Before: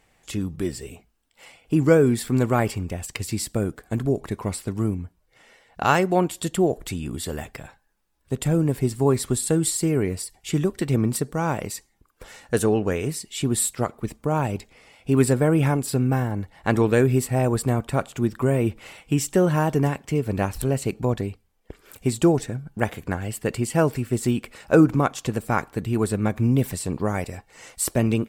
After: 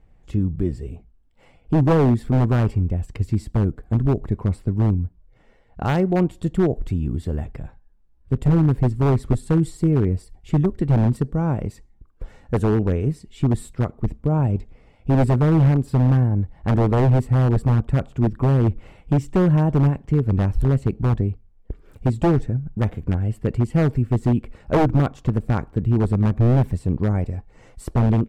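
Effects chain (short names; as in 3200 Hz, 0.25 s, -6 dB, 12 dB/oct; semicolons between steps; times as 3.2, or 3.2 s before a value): tilt -4.5 dB/oct; wavefolder -4.5 dBFS; gain -5.5 dB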